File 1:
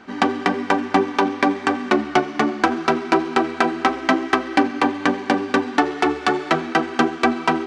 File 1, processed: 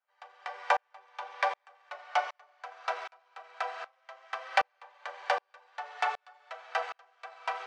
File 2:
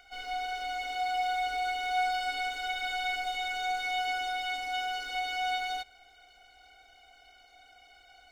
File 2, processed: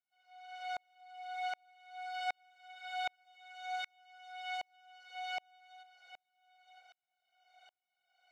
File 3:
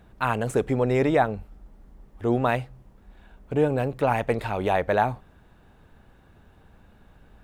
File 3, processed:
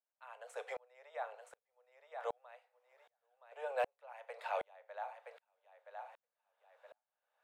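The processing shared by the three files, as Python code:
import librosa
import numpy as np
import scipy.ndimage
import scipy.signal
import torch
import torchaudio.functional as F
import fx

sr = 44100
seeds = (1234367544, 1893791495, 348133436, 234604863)

y = scipy.signal.sosfilt(scipy.signal.butter(12, 510.0, 'highpass', fs=sr, output='sos'), x)
y = fx.high_shelf(y, sr, hz=9000.0, db=-10.5)
y = fx.echo_feedback(y, sr, ms=971, feedback_pct=21, wet_db=-15.5)
y = fx.rev_fdn(y, sr, rt60_s=0.35, lf_ratio=1.0, hf_ratio=0.95, size_ms=20.0, drr_db=11.5)
y = fx.tremolo_decay(y, sr, direction='swelling', hz=1.3, depth_db=40)
y = F.gain(torch.from_numpy(y), -3.0).numpy()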